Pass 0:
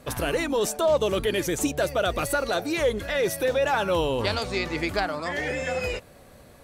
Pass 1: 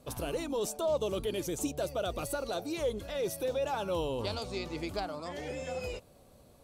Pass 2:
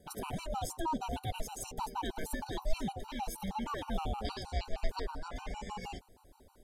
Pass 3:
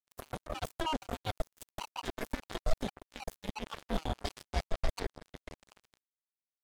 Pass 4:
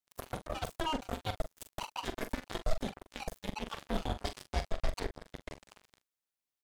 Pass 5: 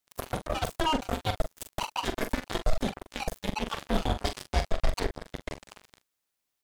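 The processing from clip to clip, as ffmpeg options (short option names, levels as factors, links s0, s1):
-af "equalizer=f=1800:t=o:w=0.77:g=-12,volume=0.398"
-af "aeval=exprs='val(0)*sin(2*PI*320*n/s)':c=same,asubboost=boost=7.5:cutoff=54,afftfilt=real='re*gt(sin(2*PI*6.4*pts/sr)*(1-2*mod(floor(b*sr/1024/770),2)),0)':imag='im*gt(sin(2*PI*6.4*pts/sr)*(1-2*mod(floor(b*sr/1024/770),2)),0)':win_size=1024:overlap=0.75,volume=1.26"
-af "acrusher=bits=4:mix=0:aa=0.5,volume=1.12"
-filter_complex "[0:a]asplit=2[s0][s1];[s1]acompressor=threshold=0.01:ratio=6,volume=0.891[s2];[s0][s2]amix=inputs=2:normalize=0,asplit=2[s3][s4];[s4]adelay=43,volume=0.316[s5];[s3][s5]amix=inputs=2:normalize=0,volume=0.75"
-af "asoftclip=type=tanh:threshold=0.075,volume=2.66"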